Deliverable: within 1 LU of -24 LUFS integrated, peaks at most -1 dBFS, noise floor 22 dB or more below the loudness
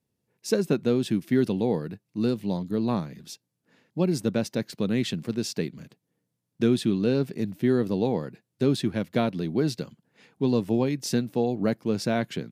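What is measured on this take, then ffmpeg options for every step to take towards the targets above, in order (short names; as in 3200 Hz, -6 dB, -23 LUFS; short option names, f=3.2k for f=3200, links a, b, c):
loudness -26.5 LUFS; peak -9.5 dBFS; loudness target -24.0 LUFS
-> -af "volume=2.5dB"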